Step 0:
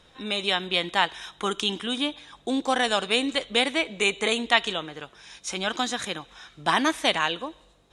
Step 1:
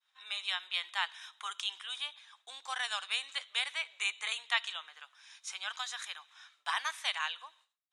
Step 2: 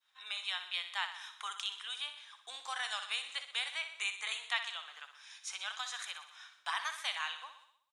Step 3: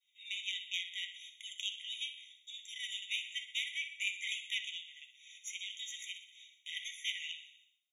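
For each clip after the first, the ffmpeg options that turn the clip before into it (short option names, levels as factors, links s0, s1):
-af "highpass=f=990:w=0.5412,highpass=f=990:w=1.3066,agate=range=0.0224:threshold=0.00251:ratio=3:detection=peak,volume=0.355"
-filter_complex "[0:a]asplit=2[s0][s1];[s1]acompressor=threshold=0.00708:ratio=6,volume=1.26[s2];[s0][s2]amix=inputs=2:normalize=0,aecho=1:1:62|124|186|248|310|372|434:0.316|0.18|0.103|0.0586|0.0334|0.019|0.0108,volume=0.531"
-af "flanger=delay=9.3:depth=7.5:regen=-59:speed=0.71:shape=sinusoidal,aeval=exprs='0.0708*(cos(1*acos(clip(val(0)/0.0708,-1,1)))-cos(1*PI/2))+0.01*(cos(4*acos(clip(val(0)/0.0708,-1,1)))-cos(4*PI/2))':c=same,afftfilt=real='re*eq(mod(floor(b*sr/1024/1900),2),1)':imag='im*eq(mod(floor(b*sr/1024/1900),2),1)':win_size=1024:overlap=0.75,volume=1.68"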